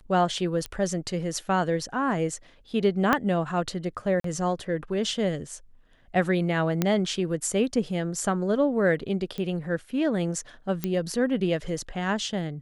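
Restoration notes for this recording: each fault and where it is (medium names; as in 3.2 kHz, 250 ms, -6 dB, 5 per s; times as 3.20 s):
0.66 s: pop -18 dBFS
3.13 s: pop -8 dBFS
4.20–4.24 s: dropout 43 ms
6.82 s: pop -9 dBFS
9.38 s: pop -21 dBFS
10.84 s: pop -13 dBFS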